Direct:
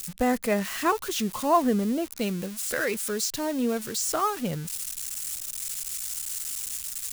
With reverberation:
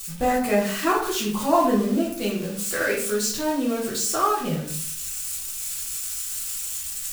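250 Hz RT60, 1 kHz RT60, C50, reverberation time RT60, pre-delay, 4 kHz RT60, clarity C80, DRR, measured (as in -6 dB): 0.70 s, 0.55 s, 4.5 dB, 0.55 s, 3 ms, 0.40 s, 9.0 dB, -6.5 dB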